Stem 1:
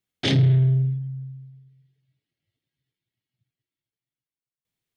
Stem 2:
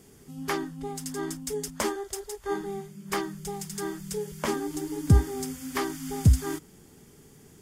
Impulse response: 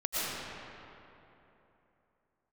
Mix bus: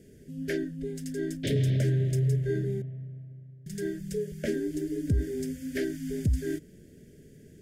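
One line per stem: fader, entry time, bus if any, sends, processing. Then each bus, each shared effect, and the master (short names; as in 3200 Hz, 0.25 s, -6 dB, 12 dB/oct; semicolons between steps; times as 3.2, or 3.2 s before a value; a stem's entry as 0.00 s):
-8.0 dB, 1.20 s, send -6.5 dB, dry
+2.5 dB, 0.00 s, muted 2.82–3.66, no send, dry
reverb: on, RT60 3.1 s, pre-delay 75 ms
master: elliptic band-stop 620–1600 Hz, stop band 40 dB; high shelf 2300 Hz -12 dB; limiter -19 dBFS, peak gain reduction 11.5 dB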